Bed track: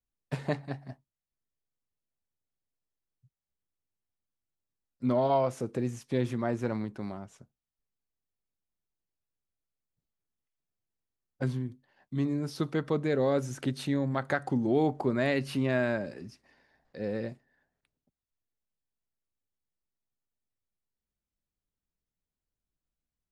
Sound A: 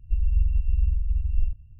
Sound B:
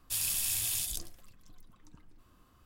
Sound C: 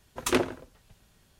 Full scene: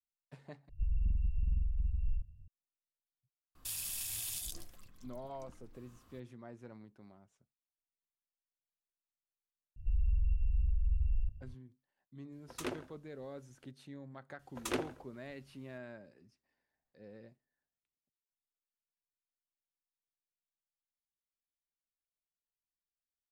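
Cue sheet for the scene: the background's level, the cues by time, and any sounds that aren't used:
bed track -20 dB
0.69 s: replace with A -7.5 dB + saturation -18 dBFS
3.55 s: add B -0.5 dB + peak limiter -29.5 dBFS
9.76 s: add A -2.5 dB + peak limiter -22.5 dBFS
12.32 s: add C -15 dB
14.39 s: add C -11 dB

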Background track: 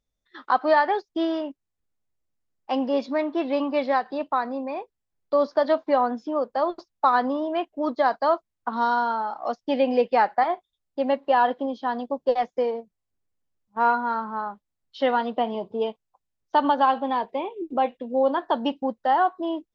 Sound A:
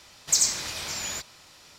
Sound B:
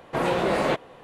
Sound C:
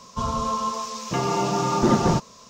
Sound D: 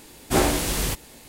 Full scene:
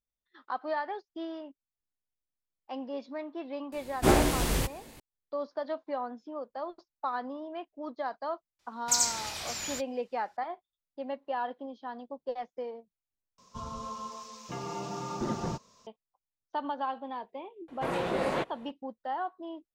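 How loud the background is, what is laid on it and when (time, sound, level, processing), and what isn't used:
background track -13.5 dB
3.72 s: add D -1.5 dB + treble shelf 2.7 kHz -6.5 dB
8.59 s: add A -4.5 dB + gate -40 dBFS, range -17 dB
13.38 s: replace with C -14 dB
17.68 s: add B -7.5 dB

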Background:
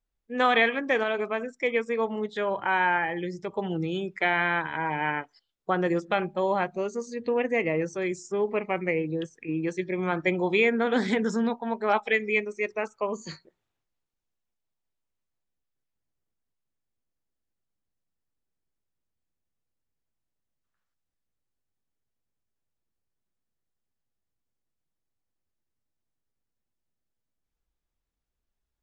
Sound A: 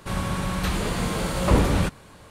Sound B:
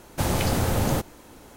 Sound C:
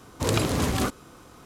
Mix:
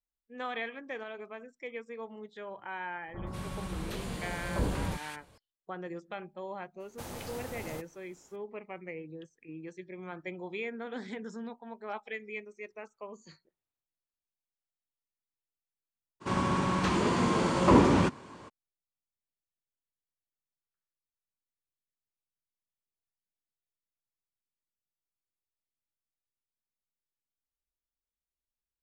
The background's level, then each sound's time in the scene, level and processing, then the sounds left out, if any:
background -15 dB
3.08 s: add A -12 dB + bands offset in time lows, highs 190 ms, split 1.3 kHz
6.80 s: add B -16 dB + bass shelf 220 Hz -7 dB
16.20 s: add A -3 dB, fades 0.02 s + cabinet simulation 110–7500 Hz, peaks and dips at 250 Hz +7 dB, 360 Hz +8 dB, 1 kHz +8 dB, 3.9 kHz -4 dB
not used: C

